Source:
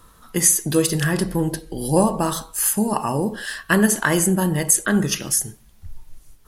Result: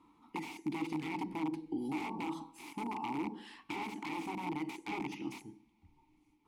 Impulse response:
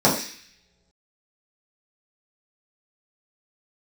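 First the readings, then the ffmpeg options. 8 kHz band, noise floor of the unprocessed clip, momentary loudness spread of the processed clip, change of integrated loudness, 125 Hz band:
−39.5 dB, −51 dBFS, 7 LU, −20.5 dB, −26.0 dB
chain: -filter_complex "[0:a]aeval=exprs='(mod(5.62*val(0)+1,2)-1)/5.62':channel_layout=same,acompressor=threshold=-25dB:ratio=6,asplit=3[link_01][link_02][link_03];[link_01]bandpass=frequency=300:width_type=q:width=8,volume=0dB[link_04];[link_02]bandpass=frequency=870:width_type=q:width=8,volume=-6dB[link_05];[link_03]bandpass=frequency=2240:width_type=q:width=8,volume=-9dB[link_06];[link_04][link_05][link_06]amix=inputs=3:normalize=0,asplit=2[link_07][link_08];[1:a]atrim=start_sample=2205,adelay=34[link_09];[link_08][link_09]afir=irnorm=-1:irlink=0,volume=-40.5dB[link_10];[link_07][link_10]amix=inputs=2:normalize=0,volume=3dB"

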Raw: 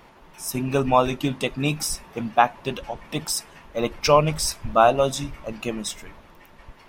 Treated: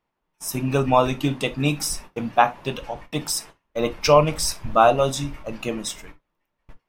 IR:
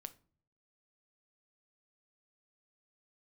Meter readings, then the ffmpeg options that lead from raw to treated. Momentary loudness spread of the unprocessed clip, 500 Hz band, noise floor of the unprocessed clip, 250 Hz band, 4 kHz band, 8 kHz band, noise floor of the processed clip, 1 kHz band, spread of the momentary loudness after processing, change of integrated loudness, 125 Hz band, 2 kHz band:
14 LU, +1.0 dB, −51 dBFS, +1.0 dB, +0.5 dB, +0.5 dB, −78 dBFS, +0.5 dB, 15 LU, +1.0 dB, +2.0 dB, +0.5 dB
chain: -filter_complex "[0:a]agate=range=-29dB:threshold=-39dB:ratio=16:detection=peak[link_01];[1:a]atrim=start_sample=2205,atrim=end_sample=3528[link_02];[link_01][link_02]afir=irnorm=-1:irlink=0,volume=6dB"

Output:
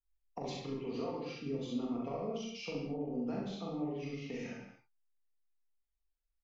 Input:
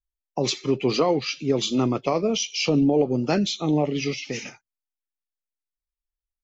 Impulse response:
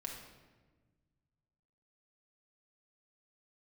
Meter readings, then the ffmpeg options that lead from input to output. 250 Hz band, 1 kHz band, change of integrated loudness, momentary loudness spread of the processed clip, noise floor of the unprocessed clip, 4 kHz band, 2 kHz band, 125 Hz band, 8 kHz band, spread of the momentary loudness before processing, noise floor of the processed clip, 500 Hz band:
−15.0 dB, −16.0 dB, −16.5 dB, 6 LU, below −85 dBFS, −21.5 dB, −17.0 dB, −16.0 dB, can't be measured, 9 LU, −84 dBFS, −16.5 dB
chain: -filter_complex "[0:a]highshelf=frequency=5200:gain=-10.5,acompressor=threshold=-35dB:ratio=5,aecho=1:1:41|67:0.668|0.668[link_01];[1:a]atrim=start_sample=2205,afade=type=out:start_time=0.29:duration=0.01,atrim=end_sample=13230[link_02];[link_01][link_02]afir=irnorm=-1:irlink=0,adynamicequalizer=threshold=0.002:dfrequency=1900:dqfactor=0.7:tfrequency=1900:tqfactor=0.7:attack=5:release=100:ratio=0.375:range=3.5:mode=cutabove:tftype=highshelf,volume=-3dB"

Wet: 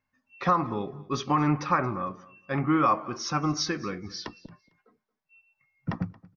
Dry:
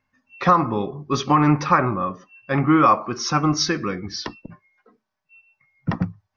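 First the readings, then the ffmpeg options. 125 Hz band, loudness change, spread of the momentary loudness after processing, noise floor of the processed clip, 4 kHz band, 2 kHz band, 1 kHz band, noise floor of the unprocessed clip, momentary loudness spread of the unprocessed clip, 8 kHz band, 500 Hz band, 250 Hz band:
−7.5 dB, −7.5 dB, 13 LU, −82 dBFS, −7.5 dB, −7.5 dB, −7.5 dB, −79 dBFS, 13 LU, can't be measured, −7.5 dB, −7.5 dB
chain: -af "aecho=1:1:226|452:0.0794|0.0175,volume=-7.5dB"

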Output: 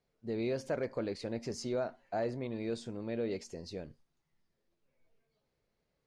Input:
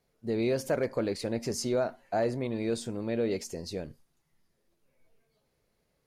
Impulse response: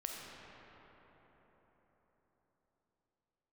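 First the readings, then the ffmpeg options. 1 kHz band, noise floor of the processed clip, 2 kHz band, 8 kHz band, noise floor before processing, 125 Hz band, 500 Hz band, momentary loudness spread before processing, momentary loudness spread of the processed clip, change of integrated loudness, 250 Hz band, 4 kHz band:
−6.0 dB, −82 dBFS, −6.0 dB, −10.5 dB, −76 dBFS, −6.0 dB, −6.0 dB, 8 LU, 9 LU, −6.0 dB, −6.0 dB, −7.0 dB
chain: -af "lowpass=6100,volume=-6dB"

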